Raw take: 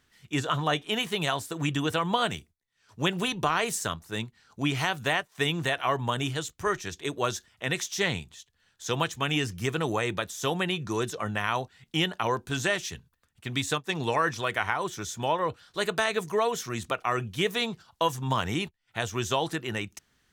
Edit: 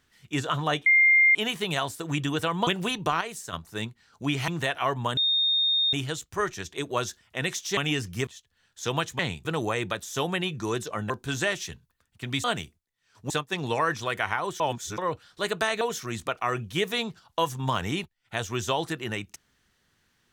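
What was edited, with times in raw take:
0:00.86: insert tone 2,110 Hz −15 dBFS 0.49 s
0:02.18–0:03.04: move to 0:13.67
0:03.58–0:03.90: clip gain −8 dB
0:04.85–0:05.51: remove
0:06.20: insert tone 3,680 Hz −20.5 dBFS 0.76 s
0:08.04–0:08.30: swap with 0:09.22–0:09.72
0:11.37–0:12.33: remove
0:14.97–0:15.35: reverse
0:16.18–0:16.44: remove

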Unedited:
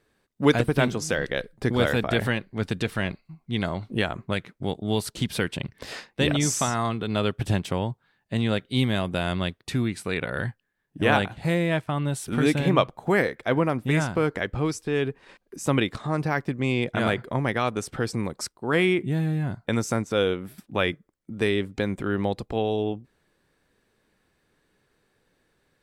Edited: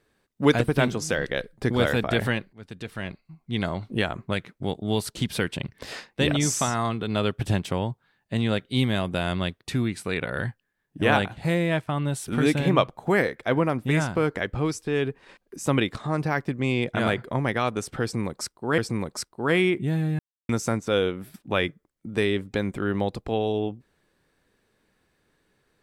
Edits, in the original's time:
0:02.53–0:03.61: fade in, from −21.5 dB
0:18.02–0:18.78: repeat, 2 plays
0:19.43–0:19.73: silence

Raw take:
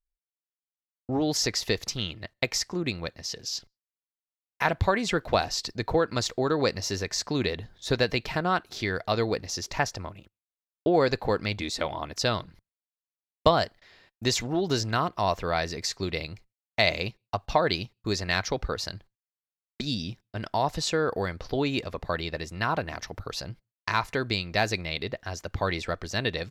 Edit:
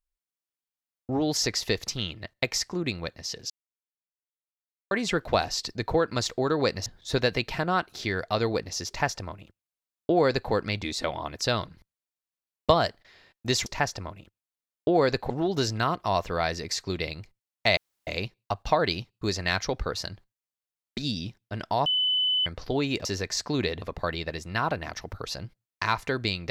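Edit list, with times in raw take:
0:03.50–0:04.91: silence
0:06.86–0:07.63: move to 0:21.88
0:09.65–0:11.29: duplicate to 0:14.43
0:16.90: splice in room tone 0.30 s
0:20.69–0:21.29: beep over 3,010 Hz −21.5 dBFS

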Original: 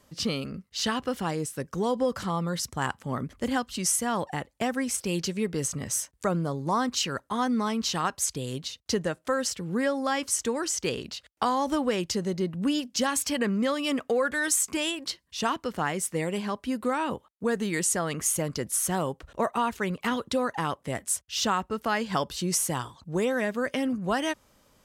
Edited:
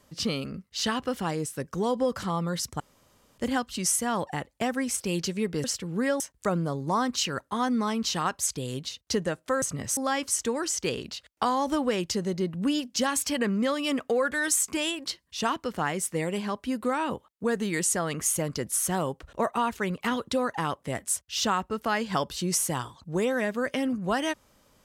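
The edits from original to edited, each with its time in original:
0:02.80–0:03.38: fill with room tone
0:05.64–0:05.99: swap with 0:09.41–0:09.97

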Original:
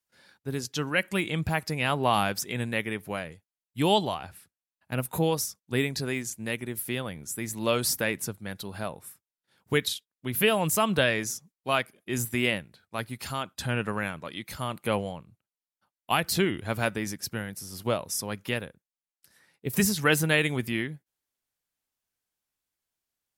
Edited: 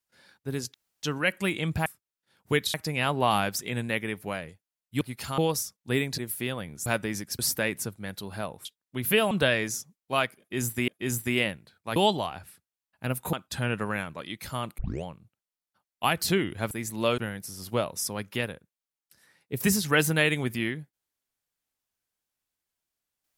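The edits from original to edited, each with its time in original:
0:00.74: splice in room tone 0.29 s
0:03.84–0:05.21: swap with 0:13.03–0:13.40
0:06.01–0:06.66: remove
0:07.34–0:07.81: swap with 0:16.78–0:17.31
0:09.07–0:09.95: move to 0:01.57
0:10.61–0:10.87: remove
0:11.95–0:12.44: repeat, 2 plays
0:14.85: tape start 0.26 s

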